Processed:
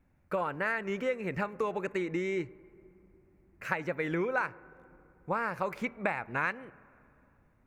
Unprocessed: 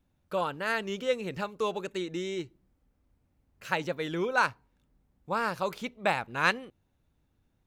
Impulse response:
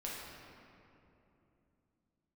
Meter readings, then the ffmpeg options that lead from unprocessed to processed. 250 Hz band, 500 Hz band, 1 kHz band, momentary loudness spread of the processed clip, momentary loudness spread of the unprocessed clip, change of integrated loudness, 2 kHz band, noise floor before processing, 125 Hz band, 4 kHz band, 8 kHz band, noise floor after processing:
+0.5 dB, -1.5 dB, -3.5 dB, 6 LU, 9 LU, -2.5 dB, -2.5 dB, -74 dBFS, 0.0 dB, -12.5 dB, no reading, -67 dBFS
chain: -filter_complex "[0:a]highshelf=f=2700:t=q:w=3:g=-7,acompressor=threshold=0.0251:ratio=6,asplit=2[s0][s1];[1:a]atrim=start_sample=2205,lowpass=2100[s2];[s1][s2]afir=irnorm=-1:irlink=0,volume=0.112[s3];[s0][s3]amix=inputs=2:normalize=0,volume=1.5"

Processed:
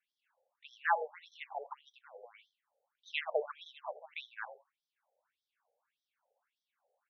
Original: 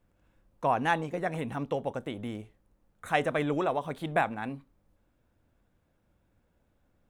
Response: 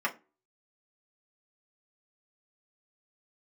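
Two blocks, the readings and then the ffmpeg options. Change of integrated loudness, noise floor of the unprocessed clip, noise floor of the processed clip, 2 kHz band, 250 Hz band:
-8.0 dB, -72 dBFS, under -85 dBFS, -6.0 dB, under -40 dB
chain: -af "aecho=1:1:81:0.168,afftfilt=real='re*between(b*sr/1024,590*pow(4500/590,0.5+0.5*sin(2*PI*1.7*pts/sr))/1.41,590*pow(4500/590,0.5+0.5*sin(2*PI*1.7*pts/sr))*1.41)':imag='im*between(b*sr/1024,590*pow(4500/590,0.5+0.5*sin(2*PI*1.7*pts/sr))/1.41,590*pow(4500/590,0.5+0.5*sin(2*PI*1.7*pts/sr))*1.41)':win_size=1024:overlap=0.75"

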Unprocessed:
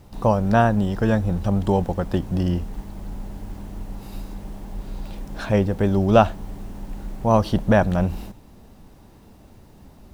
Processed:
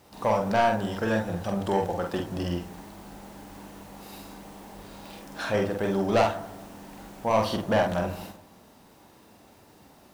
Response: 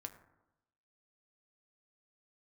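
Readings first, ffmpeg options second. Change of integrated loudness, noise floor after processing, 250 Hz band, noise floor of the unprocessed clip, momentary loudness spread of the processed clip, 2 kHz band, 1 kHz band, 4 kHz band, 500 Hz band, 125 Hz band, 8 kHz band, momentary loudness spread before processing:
-6.0 dB, -55 dBFS, -8.5 dB, -48 dBFS, 21 LU, -2.0 dB, -3.5 dB, +0.5 dB, -4.0 dB, -11.5 dB, no reading, 19 LU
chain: -filter_complex "[0:a]highpass=f=560:p=1,asoftclip=type=tanh:threshold=0.15,asplit=2[s0][s1];[1:a]atrim=start_sample=2205,adelay=46[s2];[s1][s2]afir=irnorm=-1:irlink=0,volume=1.19[s3];[s0][s3]amix=inputs=2:normalize=0"

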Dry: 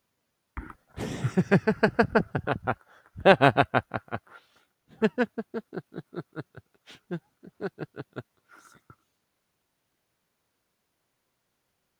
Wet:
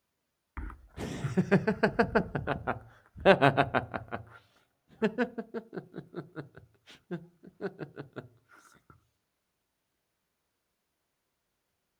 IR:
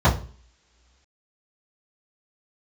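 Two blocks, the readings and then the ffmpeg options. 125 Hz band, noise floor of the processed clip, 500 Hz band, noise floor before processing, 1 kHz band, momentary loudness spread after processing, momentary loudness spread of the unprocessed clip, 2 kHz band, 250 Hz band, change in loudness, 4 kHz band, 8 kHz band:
-4.0 dB, -82 dBFS, -3.5 dB, -78 dBFS, -4.5 dB, 21 LU, 22 LU, -4.0 dB, -3.5 dB, -4.0 dB, -4.0 dB, no reading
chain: -filter_complex "[0:a]asplit=2[s0][s1];[1:a]atrim=start_sample=2205,asetrate=32634,aresample=44100[s2];[s1][s2]afir=irnorm=-1:irlink=0,volume=0.0133[s3];[s0][s3]amix=inputs=2:normalize=0,volume=0.631"

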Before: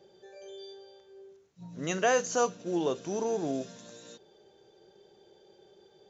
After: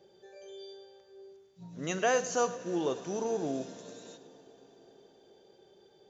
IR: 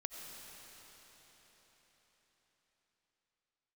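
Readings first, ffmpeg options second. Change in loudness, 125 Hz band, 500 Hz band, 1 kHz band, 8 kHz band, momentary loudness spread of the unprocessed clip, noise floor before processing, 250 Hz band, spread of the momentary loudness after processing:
-2.0 dB, -2.0 dB, -1.5 dB, -2.0 dB, no reading, 22 LU, -62 dBFS, -2.0 dB, 21 LU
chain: -filter_complex "[0:a]asplit=2[s0][s1];[1:a]atrim=start_sample=2205,adelay=105[s2];[s1][s2]afir=irnorm=-1:irlink=0,volume=0.251[s3];[s0][s3]amix=inputs=2:normalize=0,volume=0.794"

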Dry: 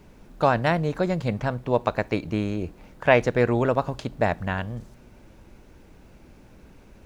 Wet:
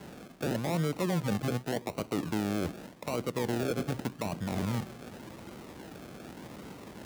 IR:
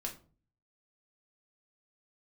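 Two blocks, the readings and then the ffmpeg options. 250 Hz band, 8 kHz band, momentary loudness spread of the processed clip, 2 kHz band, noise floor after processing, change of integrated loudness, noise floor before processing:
-4.5 dB, no reading, 16 LU, -12.5 dB, -50 dBFS, -8.5 dB, -51 dBFS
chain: -filter_complex "[0:a]acrusher=samples=36:mix=1:aa=0.000001:lfo=1:lforange=21.6:lforate=0.86,areverse,acompressor=threshold=0.0316:ratio=8,areverse,highpass=140,acrossover=split=490[s0][s1];[s1]acompressor=threshold=0.00631:ratio=2[s2];[s0][s2]amix=inputs=2:normalize=0,alimiter=level_in=1.78:limit=0.0631:level=0:latency=1:release=33,volume=0.562,volume=2.51"

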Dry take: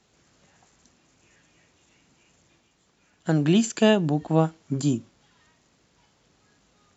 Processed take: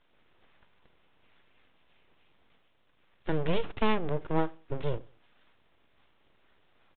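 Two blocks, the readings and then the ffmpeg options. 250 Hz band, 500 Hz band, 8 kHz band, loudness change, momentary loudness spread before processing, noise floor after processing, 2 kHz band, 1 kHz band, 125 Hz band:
-12.5 dB, -7.0 dB, no reading, -9.5 dB, 7 LU, -67 dBFS, -6.0 dB, -3.0 dB, -10.5 dB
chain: -filter_complex "[0:a]aeval=exprs='abs(val(0))':c=same,asplit=2[s0][s1];[s1]adelay=93,lowpass=f=1100:p=1,volume=0.0631,asplit=2[s2][s3];[s3]adelay=93,lowpass=f=1100:p=1,volume=0.26[s4];[s0][s2][s4]amix=inputs=3:normalize=0,asplit=2[s5][s6];[s6]acompressor=threshold=0.0251:ratio=6,volume=1[s7];[s5][s7]amix=inputs=2:normalize=0,aresample=8000,aresample=44100,volume=0.447"

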